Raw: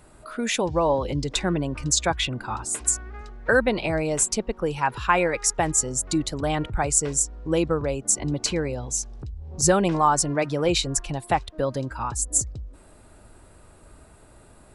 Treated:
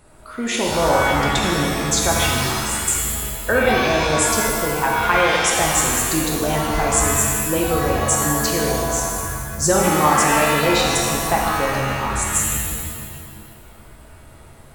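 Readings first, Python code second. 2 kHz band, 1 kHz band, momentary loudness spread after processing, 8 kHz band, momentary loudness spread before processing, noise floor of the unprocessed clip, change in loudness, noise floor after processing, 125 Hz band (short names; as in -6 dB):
+9.0 dB, +7.5 dB, 7 LU, +4.5 dB, 8 LU, -51 dBFS, +6.0 dB, -43 dBFS, +5.0 dB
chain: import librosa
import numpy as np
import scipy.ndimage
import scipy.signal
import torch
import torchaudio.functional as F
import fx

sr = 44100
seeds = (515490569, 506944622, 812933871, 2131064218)

y = fx.rev_shimmer(x, sr, seeds[0], rt60_s=1.7, semitones=7, shimmer_db=-2, drr_db=-2.0)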